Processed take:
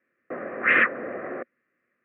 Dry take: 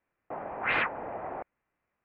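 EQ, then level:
loudspeaker in its box 160–3,100 Hz, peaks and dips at 240 Hz +8 dB, 360 Hz +7 dB, 530 Hz +9 dB, 840 Hz +6 dB, 1,200 Hz +7 dB, 1,800 Hz +9 dB
phaser with its sweep stopped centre 2,100 Hz, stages 4
+4.5 dB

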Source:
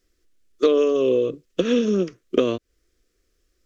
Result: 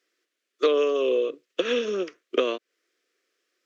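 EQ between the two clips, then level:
Bessel high-pass filter 470 Hz, order 4
tilt shelving filter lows +4 dB, about 1,200 Hz
parametric band 2,400 Hz +10 dB 2.4 octaves
−4.5 dB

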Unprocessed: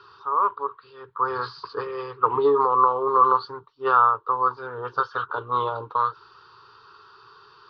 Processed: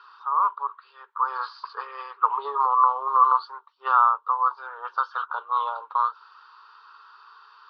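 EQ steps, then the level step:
high-pass filter 760 Hz 24 dB per octave
low-pass filter 2,600 Hz 6 dB per octave
dynamic equaliser 1,900 Hz, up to −8 dB, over −40 dBFS, Q 2.3
+2.0 dB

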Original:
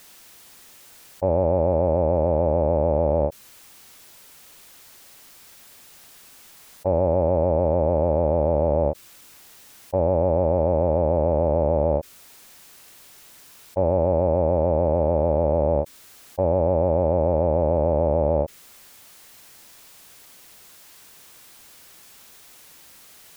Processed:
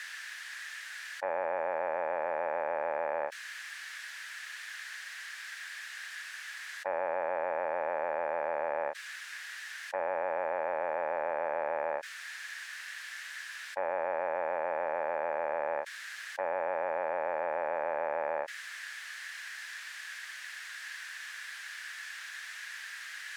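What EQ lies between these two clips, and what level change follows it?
high-pass with resonance 1,700 Hz, resonance Q 7.5
high-frequency loss of the air 68 metres
+5.5 dB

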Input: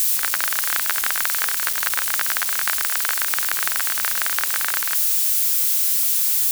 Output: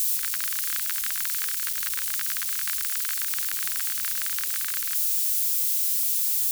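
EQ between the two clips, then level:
guitar amp tone stack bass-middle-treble 6-0-2
+9.0 dB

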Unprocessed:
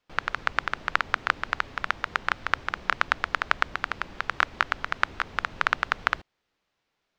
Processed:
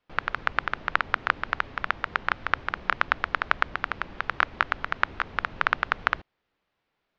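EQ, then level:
high-frequency loss of the air 170 metres
+1.5 dB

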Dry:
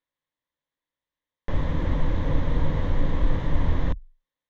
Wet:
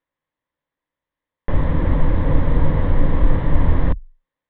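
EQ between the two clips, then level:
Bessel low-pass filter 2,200 Hz, order 4
+7.0 dB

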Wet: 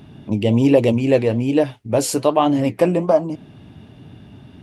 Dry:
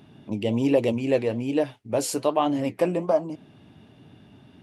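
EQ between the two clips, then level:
low-shelf EQ 110 Hz +11 dB
+6.0 dB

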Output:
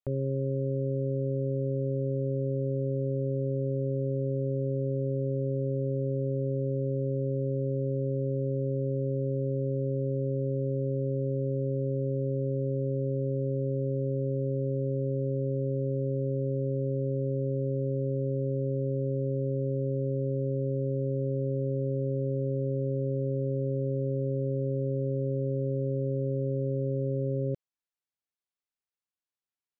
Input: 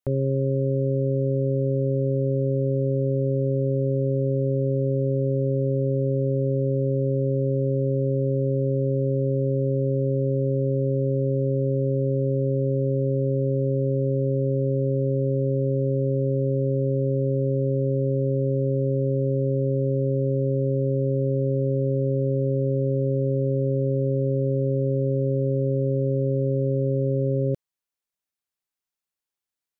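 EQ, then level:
high-frequency loss of the air 65 metres
−6.5 dB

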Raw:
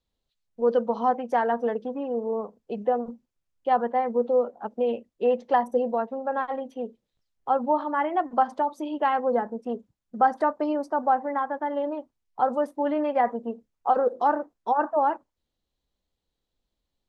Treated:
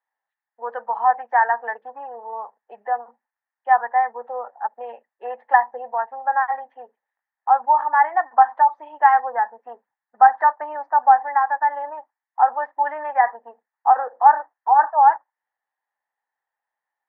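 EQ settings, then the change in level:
high-pass with resonance 840 Hz, resonance Q 6.2
low-pass with resonance 1,800 Hz, resonance Q 10
high-frequency loss of the air 130 metres
−5.5 dB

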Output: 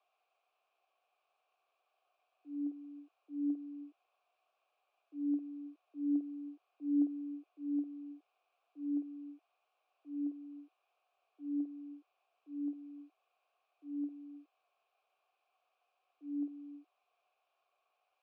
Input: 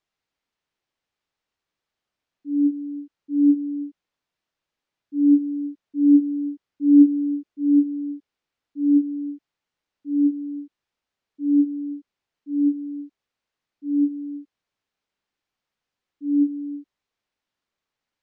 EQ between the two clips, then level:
formant filter a
Butterworth high-pass 350 Hz 48 dB per octave
+17.0 dB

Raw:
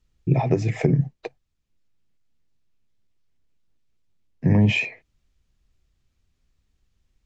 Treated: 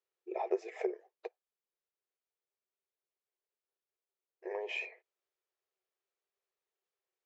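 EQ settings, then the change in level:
linear-phase brick-wall high-pass 350 Hz
high-shelf EQ 2,000 Hz −11 dB
−8.0 dB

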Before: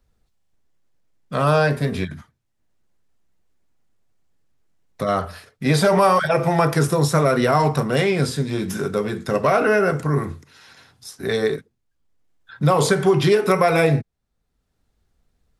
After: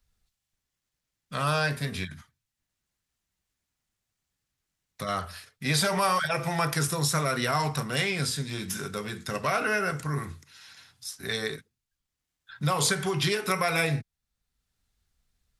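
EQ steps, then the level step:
guitar amp tone stack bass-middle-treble 5-5-5
+6.5 dB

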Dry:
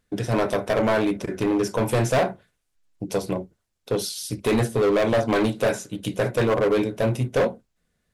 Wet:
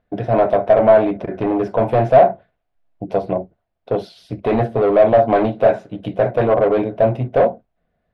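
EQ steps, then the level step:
high-frequency loss of the air 400 metres
parametric band 680 Hz +14 dB 0.52 octaves
+2.5 dB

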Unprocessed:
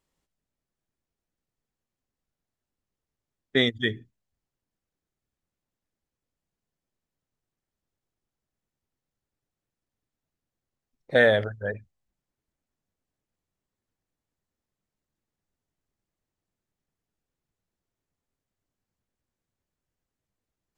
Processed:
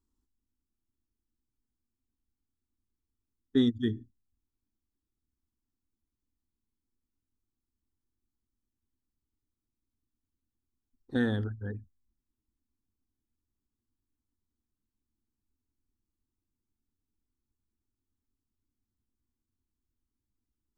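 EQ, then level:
low shelf with overshoot 340 Hz +13 dB, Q 1.5
phaser with its sweep stopped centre 600 Hz, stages 6
−7.5 dB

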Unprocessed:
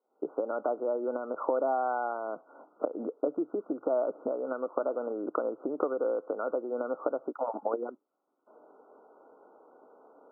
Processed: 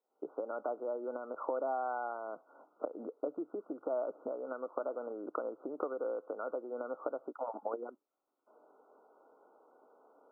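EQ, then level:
low-shelf EQ 400 Hz −5.5 dB
−5.0 dB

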